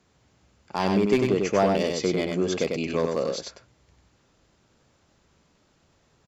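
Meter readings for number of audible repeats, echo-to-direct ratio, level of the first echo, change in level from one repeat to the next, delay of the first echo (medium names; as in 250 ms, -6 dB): 1, -4.0 dB, -4.0 dB, no regular repeats, 97 ms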